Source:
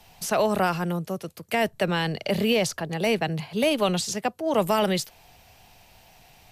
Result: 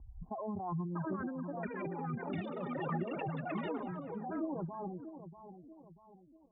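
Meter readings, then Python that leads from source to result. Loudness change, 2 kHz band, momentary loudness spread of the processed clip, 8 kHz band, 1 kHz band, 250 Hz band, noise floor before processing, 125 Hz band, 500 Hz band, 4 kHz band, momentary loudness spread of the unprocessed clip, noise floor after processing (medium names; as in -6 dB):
-14.5 dB, -18.0 dB, 15 LU, under -40 dB, -13.0 dB, -11.0 dB, -55 dBFS, -10.0 dB, -17.0 dB, -30.5 dB, 6 LU, -62 dBFS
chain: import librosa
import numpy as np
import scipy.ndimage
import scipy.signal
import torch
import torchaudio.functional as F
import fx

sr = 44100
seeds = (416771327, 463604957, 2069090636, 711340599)

y = fx.bin_expand(x, sr, power=3.0)
y = scipy.signal.sosfilt(scipy.signal.butter(2, 46.0, 'highpass', fs=sr, output='sos'), y)
y = fx.over_compress(y, sr, threshold_db=-39.0, ratio=-1.0)
y = scipy.signal.sosfilt(scipy.signal.cheby1(6, 9, 1100.0, 'lowpass', fs=sr, output='sos'), y)
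y = fx.echo_feedback(y, sr, ms=639, feedback_pct=42, wet_db=-11.0)
y = fx.echo_pitch(y, sr, ms=746, semitones=7, count=3, db_per_echo=-3.0)
y = fx.pre_swell(y, sr, db_per_s=40.0)
y = F.gain(torch.from_numpy(y), 3.0).numpy()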